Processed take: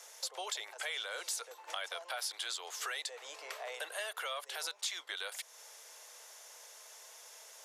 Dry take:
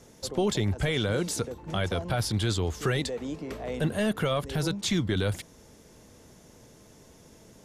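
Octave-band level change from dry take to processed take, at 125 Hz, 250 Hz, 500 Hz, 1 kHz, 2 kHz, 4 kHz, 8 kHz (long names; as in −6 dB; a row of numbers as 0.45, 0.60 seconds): below −40 dB, −39.0 dB, −17.0 dB, −7.5 dB, −5.5 dB, −4.5 dB, −3.0 dB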